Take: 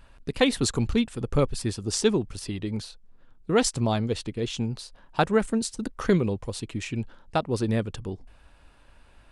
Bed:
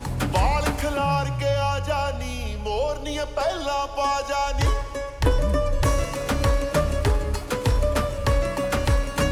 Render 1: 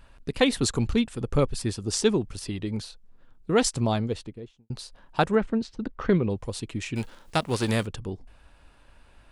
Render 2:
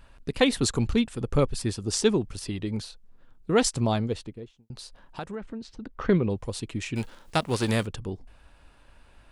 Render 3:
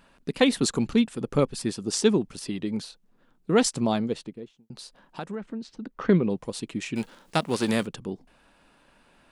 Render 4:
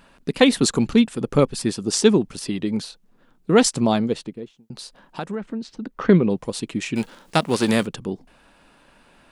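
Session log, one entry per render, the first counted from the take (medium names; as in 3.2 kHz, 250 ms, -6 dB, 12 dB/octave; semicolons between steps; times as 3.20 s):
3.89–4.70 s: studio fade out; 5.35–6.30 s: distance through air 230 m; 6.95–7.85 s: formants flattened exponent 0.6
4.43–5.98 s: compression 2.5:1, threshold -38 dBFS
resonant low shelf 120 Hz -13 dB, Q 1.5
trim +5.5 dB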